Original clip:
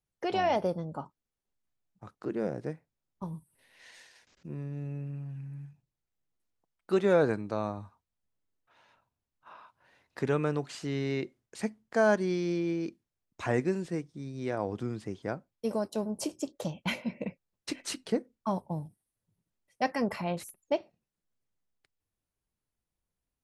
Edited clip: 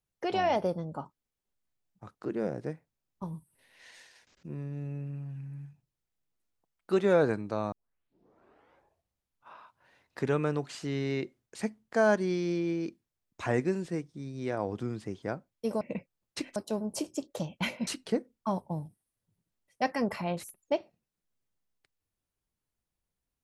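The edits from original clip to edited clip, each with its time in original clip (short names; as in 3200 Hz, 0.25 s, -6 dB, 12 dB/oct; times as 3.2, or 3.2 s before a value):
7.72 tape start 1.82 s
17.12–17.87 move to 15.81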